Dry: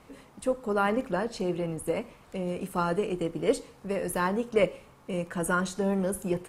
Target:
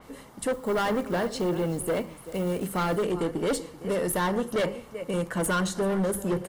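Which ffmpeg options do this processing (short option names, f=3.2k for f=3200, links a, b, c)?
-filter_complex "[0:a]bandreject=f=50:t=h:w=6,bandreject=f=100:t=h:w=6,bandreject=f=150:t=h:w=6,bandreject=f=200:t=h:w=6,aecho=1:1:385:0.126,asettb=1/sr,asplit=3[a][b][c];[a]atrim=end=0.534[d];[b]atrim=start=0.53:end=3.03,asetpts=PTS-STARTPTS,afade=t=in:d=0.004:c=qsin,afade=t=out:st=2.496:d=0.004:c=qsin,acrusher=bits=6:mode=log:mix=0:aa=0.000001[e];[c]atrim=start=3.026[f];[d][e]acrossfade=d=0.004:c1=hsin:c2=qsin[g];[g][f]acrossfade=d=0.004:c1=qsin:c2=hsin,highshelf=f=10k:g=8,asoftclip=type=hard:threshold=-27.5dB,bandreject=f=2.5k:w=8.3,adynamicequalizer=threshold=0.00282:dfrequency=5000:dqfactor=0.7:tfrequency=5000:tqfactor=0.7:attack=5:release=100:ratio=0.375:range=2.5:mode=cutabove:tftype=highshelf,volume=5dB"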